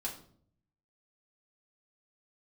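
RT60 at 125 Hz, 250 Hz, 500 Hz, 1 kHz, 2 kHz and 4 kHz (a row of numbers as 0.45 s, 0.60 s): 1.0 s, 0.80 s, 0.65 s, 0.50 s, 0.40 s, 0.40 s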